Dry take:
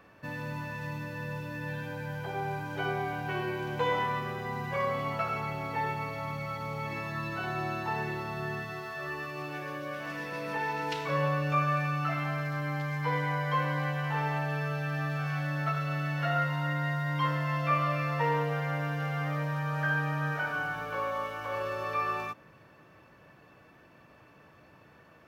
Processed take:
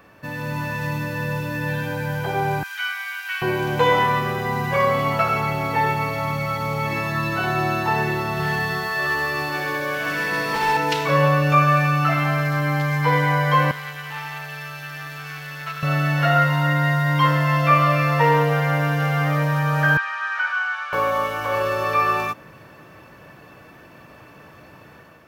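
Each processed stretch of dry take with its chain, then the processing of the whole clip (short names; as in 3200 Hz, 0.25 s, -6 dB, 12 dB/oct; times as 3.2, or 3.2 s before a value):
2.63–3.42 inverse Chebyshev high-pass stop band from 430 Hz, stop band 60 dB + doubler 33 ms -11.5 dB
8.33–10.77 overloaded stage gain 30 dB + flutter echo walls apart 11.3 m, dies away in 1 s
13.71–15.83 passive tone stack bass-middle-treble 10-0-10 + core saturation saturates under 1200 Hz
19.97–20.93 HPF 1100 Hz 24 dB/oct + air absorption 110 m
whole clip: high shelf 8500 Hz +7 dB; AGC gain up to 5 dB; gain +6.5 dB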